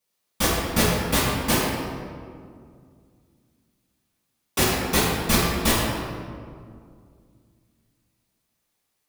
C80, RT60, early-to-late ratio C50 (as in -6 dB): 0.5 dB, 2.2 s, -2.0 dB